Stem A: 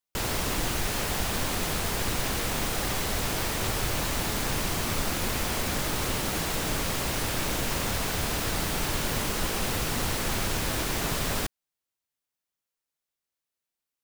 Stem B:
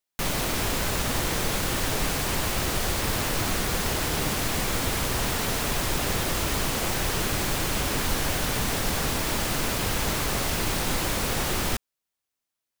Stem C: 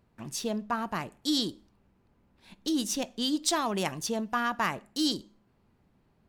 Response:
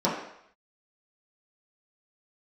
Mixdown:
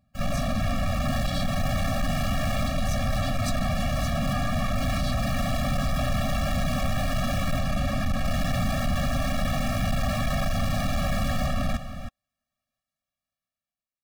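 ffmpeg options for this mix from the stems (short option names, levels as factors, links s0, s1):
-filter_complex "[0:a]dynaudnorm=f=180:g=9:m=3.55,highshelf=f=3700:g=-11.5,volume=0.668,asplit=3[s0][s1][s2];[s0]atrim=end=7.59,asetpts=PTS-STARTPTS,afade=t=out:st=7.586:d=0.004:c=hsin[s3];[s1]atrim=start=7.59:end=8.25,asetpts=PTS-STARTPTS,volume=0[s4];[s2]atrim=start=8.25,asetpts=PTS-STARTPTS,afade=t=in:d=0.004:c=hsin[s5];[s3][s4][s5]concat=n=3:v=0:a=1[s6];[1:a]lowpass=f=1100:p=1,acontrast=86,volume=1.33,asplit=2[s7][s8];[s8]volume=0.178[s9];[2:a]volume=1.06,asplit=2[s10][s11];[s11]apad=whole_len=619155[s12];[s6][s12]sidechaincompress=threshold=0.02:ratio=8:attack=16:release=168[s13];[s9]aecho=0:1:319:1[s14];[s13][s7][s10][s14]amix=inputs=4:normalize=0,asoftclip=type=tanh:threshold=0.0944,afftfilt=real='re*eq(mod(floor(b*sr/1024/270),2),0)':imag='im*eq(mod(floor(b*sr/1024/270),2),0)':win_size=1024:overlap=0.75"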